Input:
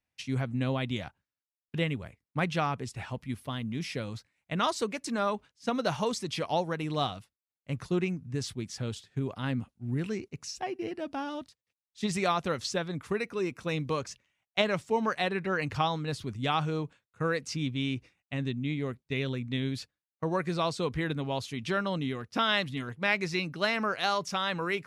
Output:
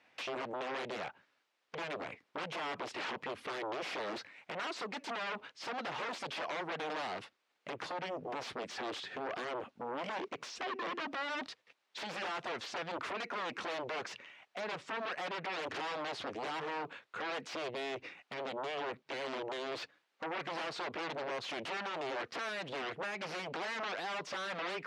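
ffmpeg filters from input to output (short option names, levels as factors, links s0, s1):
-af "acompressor=threshold=0.00891:ratio=12,alimiter=level_in=7.08:limit=0.0631:level=0:latency=1:release=216,volume=0.141,aeval=exprs='0.00891*sin(PI/2*3.98*val(0)/0.00891)':c=same,highpass=350,lowpass=3200,volume=2.37"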